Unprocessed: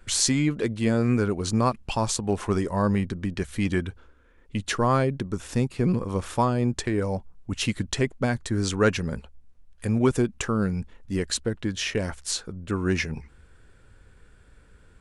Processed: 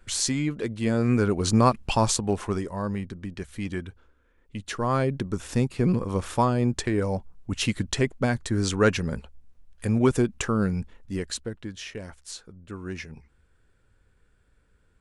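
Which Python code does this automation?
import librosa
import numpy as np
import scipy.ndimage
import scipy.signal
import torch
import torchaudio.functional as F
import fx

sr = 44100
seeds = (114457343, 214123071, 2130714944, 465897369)

y = fx.gain(x, sr, db=fx.line((0.68, -3.5), (1.48, 3.5), (2.05, 3.5), (2.77, -6.5), (4.68, -6.5), (5.14, 0.5), (10.77, 0.5), (11.92, -10.5)))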